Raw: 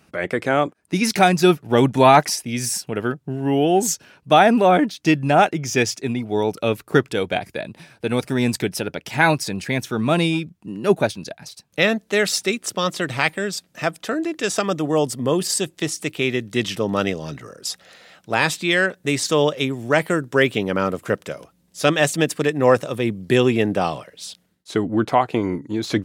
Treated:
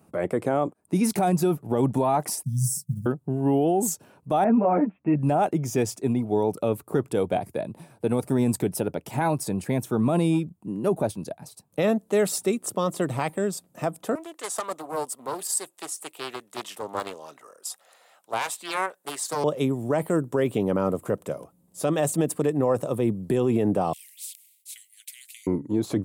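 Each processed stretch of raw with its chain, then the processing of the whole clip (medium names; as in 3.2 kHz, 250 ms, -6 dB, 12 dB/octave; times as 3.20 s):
2.43–3.06 s: companding laws mixed up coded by A + elliptic band-stop 170–5300 Hz + peaking EQ 140 Hz +14 dB 0.44 oct
4.44–5.19 s: steep low-pass 2.6 kHz 72 dB/octave + three-phase chorus
14.15–19.44 s: high-pass 890 Hz + loudspeaker Doppler distortion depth 0.39 ms
23.93–25.47 s: steep high-pass 2.1 kHz 96 dB/octave + spectrum-flattening compressor 2:1
whole clip: high-pass 71 Hz 24 dB/octave; high-order bell 3 kHz -13 dB 2.4 oct; peak limiter -13.5 dBFS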